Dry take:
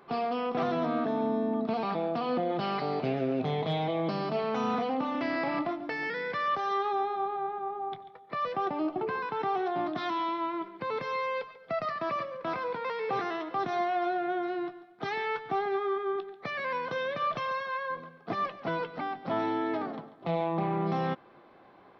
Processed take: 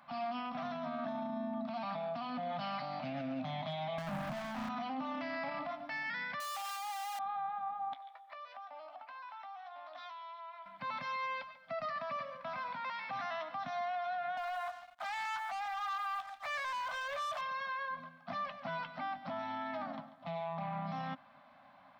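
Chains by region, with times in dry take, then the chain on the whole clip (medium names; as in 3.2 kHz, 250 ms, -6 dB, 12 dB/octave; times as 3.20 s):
3.98–4.69 s: low-pass 1.3 kHz + tilt EQ -2 dB/octave + waveshaping leveller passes 5
6.40–7.19 s: one-bit comparator + high-pass 530 Hz + peaking EQ 840 Hz +7 dB 0.3 oct
7.93–10.66 s: high-pass 440 Hz 24 dB/octave + doubling 15 ms -8 dB + compression 16:1, threshold -42 dBFS
14.37–17.41 s: high-pass 630 Hz 24 dB/octave + peaking EQ 4.6 kHz -7.5 dB 3 oct + waveshaping leveller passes 3
whole clip: elliptic band-stop 270–580 Hz; bass shelf 160 Hz -7.5 dB; peak limiter -30 dBFS; trim -1.5 dB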